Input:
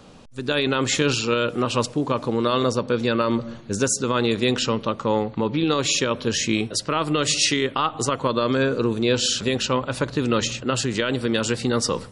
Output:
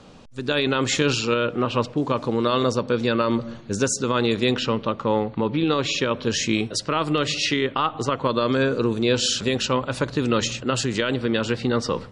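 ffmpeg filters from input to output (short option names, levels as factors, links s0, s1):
-af "asetnsamples=n=441:p=0,asendcmd='1.34 lowpass f 3200;1.97 lowpass f 7800;4.54 lowpass f 4100;6.23 lowpass f 7700;7.18 lowpass f 4000;8.25 lowpass f 9100;11.14 lowpass f 3900',lowpass=7800"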